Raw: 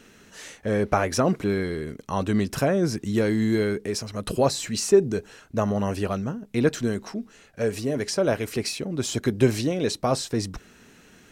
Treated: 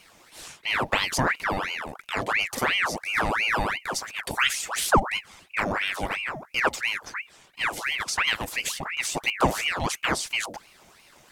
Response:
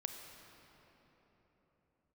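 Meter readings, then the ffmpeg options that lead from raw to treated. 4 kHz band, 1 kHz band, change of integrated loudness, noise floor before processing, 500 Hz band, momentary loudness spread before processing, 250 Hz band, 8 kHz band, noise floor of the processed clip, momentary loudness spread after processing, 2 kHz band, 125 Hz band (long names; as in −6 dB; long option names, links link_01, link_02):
+5.5 dB, +4.5 dB, −1.0 dB, −54 dBFS, −9.0 dB, 10 LU, −10.5 dB, +1.0 dB, −56 dBFS, 8 LU, +10.0 dB, −9.0 dB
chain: -af "highshelf=frequency=6600:gain=7.5,aeval=exprs='val(0)*sin(2*PI*1500*n/s+1500*0.75/2.9*sin(2*PI*2.9*n/s))':channel_layout=same"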